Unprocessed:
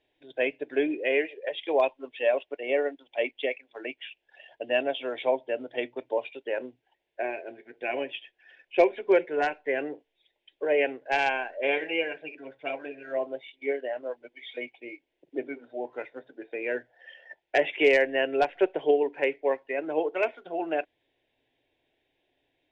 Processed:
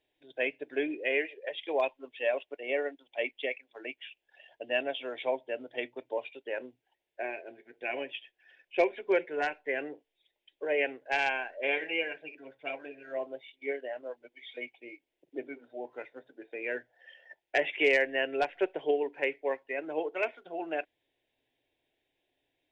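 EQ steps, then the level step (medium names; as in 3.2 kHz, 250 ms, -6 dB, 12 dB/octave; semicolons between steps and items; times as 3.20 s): treble shelf 4.8 kHz +5.5 dB; dynamic bell 2 kHz, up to +4 dB, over -38 dBFS, Q 1.1; -6.0 dB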